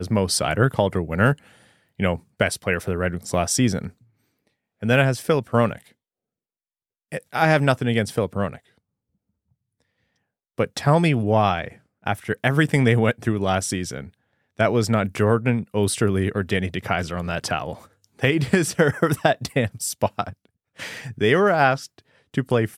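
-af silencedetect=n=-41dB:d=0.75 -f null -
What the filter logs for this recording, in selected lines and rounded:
silence_start: 3.90
silence_end: 4.82 | silence_duration: 0.92
silence_start: 5.87
silence_end: 7.12 | silence_duration: 1.25
silence_start: 8.58
silence_end: 10.58 | silence_duration: 2.00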